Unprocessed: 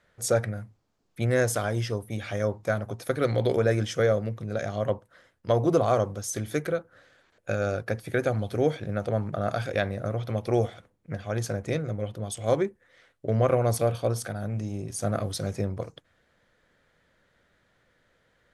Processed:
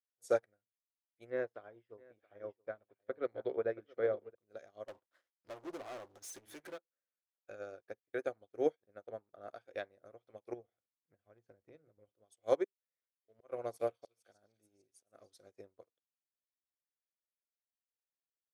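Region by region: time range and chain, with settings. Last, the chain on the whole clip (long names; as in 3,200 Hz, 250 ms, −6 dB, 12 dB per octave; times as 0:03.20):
0:01.30–0:04.35: high-frequency loss of the air 390 metres + single-tap delay 675 ms −10 dB
0:04.88–0:06.78: parametric band 460 Hz −12 dB 0.29 octaves + downward compressor 2.5 to 1, threshold −36 dBFS + leveller curve on the samples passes 5
0:07.50–0:09.94: noise gate −36 dBFS, range −10 dB + high-shelf EQ 3,900 Hz −3.5 dB
0:10.53–0:12.09: high-pass filter 45 Hz 6 dB per octave + bass and treble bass +11 dB, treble −13 dB + downward compressor 12 to 1, threshold −23 dBFS
0:12.64–0:15.46: volume swells 215 ms + echo through a band-pass that steps 297 ms, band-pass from 3,300 Hz, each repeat 0.7 octaves, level −2 dB
whole clip: low shelf with overshoot 240 Hz −12.5 dB, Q 1.5; expander for the loud parts 2.5 to 1, over −43 dBFS; level −6.5 dB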